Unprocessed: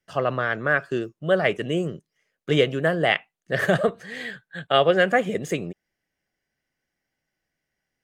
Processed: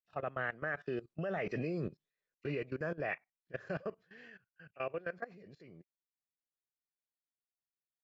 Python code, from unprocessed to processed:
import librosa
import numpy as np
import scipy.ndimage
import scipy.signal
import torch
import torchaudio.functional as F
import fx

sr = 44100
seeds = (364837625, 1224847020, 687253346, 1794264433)

y = fx.freq_compress(x, sr, knee_hz=1900.0, ratio=1.5)
y = fx.doppler_pass(y, sr, speed_mps=15, closest_m=4.4, pass_at_s=1.63)
y = fx.level_steps(y, sr, step_db=19)
y = F.gain(torch.from_numpy(y), 2.0).numpy()